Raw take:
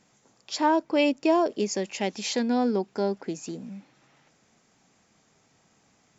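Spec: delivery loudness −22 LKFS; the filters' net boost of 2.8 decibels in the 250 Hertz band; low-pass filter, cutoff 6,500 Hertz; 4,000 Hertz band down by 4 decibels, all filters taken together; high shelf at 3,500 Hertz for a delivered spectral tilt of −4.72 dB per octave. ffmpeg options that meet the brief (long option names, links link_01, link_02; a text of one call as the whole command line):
ffmpeg -i in.wav -af "lowpass=6500,equalizer=frequency=250:width_type=o:gain=3.5,highshelf=frequency=3500:gain=5,equalizer=frequency=4000:width_type=o:gain=-8.5,volume=3dB" out.wav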